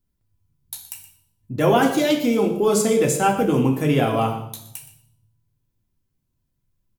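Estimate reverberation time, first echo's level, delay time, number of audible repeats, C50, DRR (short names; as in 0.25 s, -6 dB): 0.75 s, -15.0 dB, 0.121 s, 1, 7.5 dB, 1.5 dB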